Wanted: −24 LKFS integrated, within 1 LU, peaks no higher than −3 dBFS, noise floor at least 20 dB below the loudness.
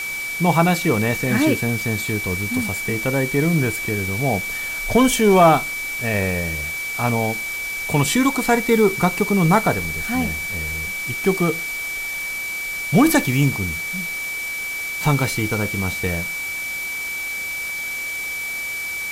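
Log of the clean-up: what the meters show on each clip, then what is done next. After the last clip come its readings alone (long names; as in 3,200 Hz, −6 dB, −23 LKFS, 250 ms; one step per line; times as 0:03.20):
interfering tone 2,300 Hz; level of the tone −25 dBFS; background noise floor −27 dBFS; target noise floor −40 dBFS; integrated loudness −20.0 LKFS; sample peak −3.5 dBFS; target loudness −24.0 LKFS
→ notch filter 2,300 Hz, Q 30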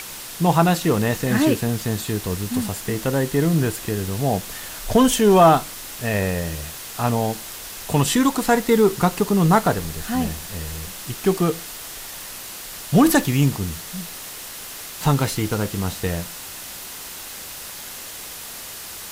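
interfering tone none found; background noise floor −36 dBFS; target noise floor −41 dBFS
→ noise reduction from a noise print 6 dB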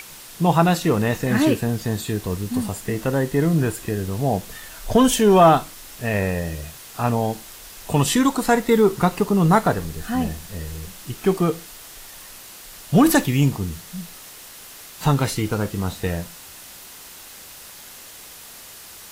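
background noise floor −42 dBFS; integrated loudness −20.5 LKFS; sample peak −4.5 dBFS; target loudness −24.0 LKFS
→ level −3.5 dB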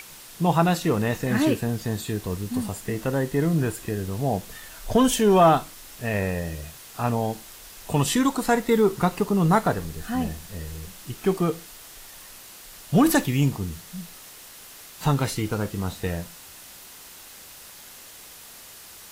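integrated loudness −24.0 LKFS; sample peak −8.0 dBFS; background noise floor −45 dBFS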